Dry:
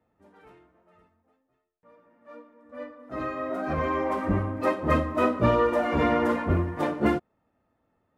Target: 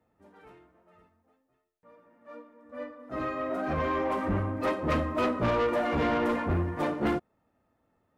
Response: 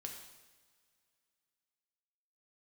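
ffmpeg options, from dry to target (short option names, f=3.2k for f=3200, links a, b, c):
-af "asoftclip=type=tanh:threshold=-22dB"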